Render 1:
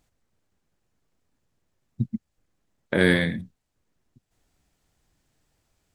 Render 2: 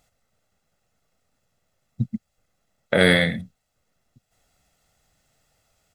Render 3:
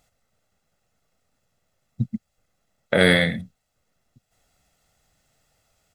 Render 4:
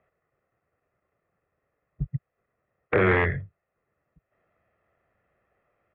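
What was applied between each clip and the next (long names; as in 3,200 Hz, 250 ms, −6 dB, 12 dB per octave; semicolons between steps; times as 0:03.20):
low-shelf EQ 150 Hz −9.5 dB; comb filter 1.5 ms, depth 57%; level +5 dB
no processing that can be heard
wrap-around overflow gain 9 dB; single-sideband voice off tune −82 Hz 160–2,300 Hz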